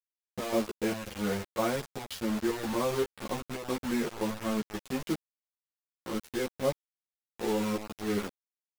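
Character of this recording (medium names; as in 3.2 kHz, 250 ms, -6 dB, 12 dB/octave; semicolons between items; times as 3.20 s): chopped level 1.9 Hz, depth 65%, duty 75%; a quantiser's noise floor 6-bit, dither none; a shimmering, thickened sound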